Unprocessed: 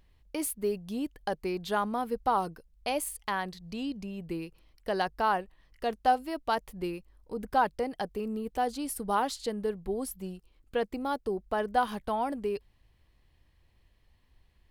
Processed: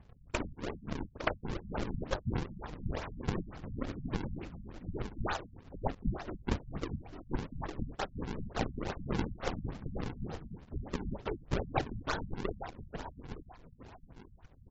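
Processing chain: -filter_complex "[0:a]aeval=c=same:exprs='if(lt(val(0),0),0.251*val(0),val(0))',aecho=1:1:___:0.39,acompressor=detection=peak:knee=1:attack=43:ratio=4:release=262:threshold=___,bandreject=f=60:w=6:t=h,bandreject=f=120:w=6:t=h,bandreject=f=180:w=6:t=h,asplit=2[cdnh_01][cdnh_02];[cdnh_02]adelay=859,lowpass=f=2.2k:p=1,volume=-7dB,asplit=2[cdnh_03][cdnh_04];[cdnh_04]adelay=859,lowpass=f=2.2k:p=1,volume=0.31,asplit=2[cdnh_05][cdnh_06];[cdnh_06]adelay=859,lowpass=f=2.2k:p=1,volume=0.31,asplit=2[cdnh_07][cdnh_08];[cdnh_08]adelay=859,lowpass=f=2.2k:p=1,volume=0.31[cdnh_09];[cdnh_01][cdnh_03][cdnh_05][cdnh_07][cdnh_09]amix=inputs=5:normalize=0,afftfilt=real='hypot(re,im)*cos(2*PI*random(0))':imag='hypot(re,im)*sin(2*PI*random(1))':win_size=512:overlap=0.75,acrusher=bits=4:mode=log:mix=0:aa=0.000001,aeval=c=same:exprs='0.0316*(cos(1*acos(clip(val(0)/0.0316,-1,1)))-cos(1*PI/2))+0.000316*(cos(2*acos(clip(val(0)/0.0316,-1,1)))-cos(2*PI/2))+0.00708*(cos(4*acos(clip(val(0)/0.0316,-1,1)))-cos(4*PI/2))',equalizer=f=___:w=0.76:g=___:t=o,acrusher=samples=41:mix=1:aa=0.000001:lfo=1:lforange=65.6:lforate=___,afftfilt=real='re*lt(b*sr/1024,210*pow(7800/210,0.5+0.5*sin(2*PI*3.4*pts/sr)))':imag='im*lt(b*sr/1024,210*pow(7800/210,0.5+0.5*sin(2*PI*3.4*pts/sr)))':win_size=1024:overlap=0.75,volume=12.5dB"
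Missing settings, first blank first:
5.3, -46dB, 1.4k, 9.5, 2.2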